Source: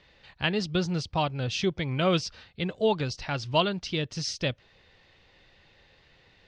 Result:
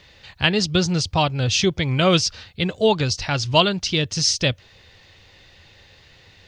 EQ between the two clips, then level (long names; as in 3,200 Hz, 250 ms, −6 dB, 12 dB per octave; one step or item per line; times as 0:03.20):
parametric band 91 Hz +8.5 dB 0.66 octaves
high-shelf EQ 4,600 Hz +11.5 dB
parametric band 6,700 Hz +3 dB 0.21 octaves
+6.5 dB